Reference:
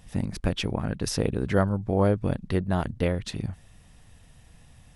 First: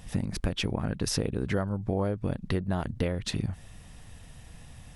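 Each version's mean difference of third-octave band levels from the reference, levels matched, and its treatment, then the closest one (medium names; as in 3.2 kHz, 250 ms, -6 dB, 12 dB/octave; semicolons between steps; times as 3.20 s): 4.0 dB: compression 6:1, threshold -30 dBFS, peak gain reduction 13.5 dB; trim +5 dB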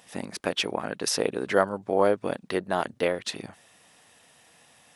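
5.5 dB: high-pass 410 Hz 12 dB/octave; trim +4.5 dB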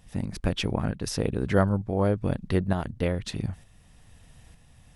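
1.0 dB: tremolo saw up 1.1 Hz, depth 50%; trim +2 dB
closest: third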